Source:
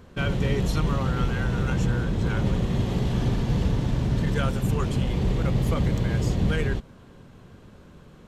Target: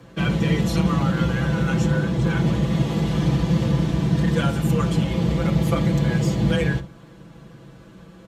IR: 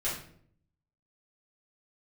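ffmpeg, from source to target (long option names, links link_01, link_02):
-filter_complex "[0:a]afreqshift=30,aecho=1:1:6:1,asplit=2[link_01][link_02];[1:a]atrim=start_sample=2205,atrim=end_sample=3969[link_03];[link_02][link_03]afir=irnorm=-1:irlink=0,volume=-15dB[link_04];[link_01][link_04]amix=inputs=2:normalize=0"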